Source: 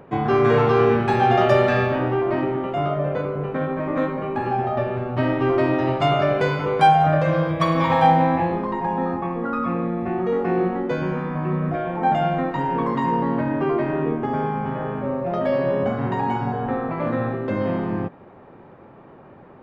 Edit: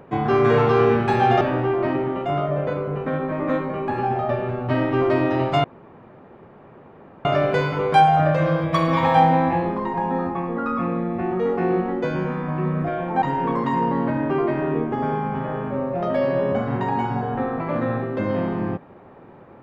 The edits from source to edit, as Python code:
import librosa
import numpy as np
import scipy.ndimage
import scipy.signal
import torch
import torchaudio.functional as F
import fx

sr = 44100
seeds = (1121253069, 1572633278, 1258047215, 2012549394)

y = fx.edit(x, sr, fx.cut(start_s=1.41, length_s=0.48),
    fx.insert_room_tone(at_s=6.12, length_s=1.61),
    fx.cut(start_s=12.09, length_s=0.44), tone=tone)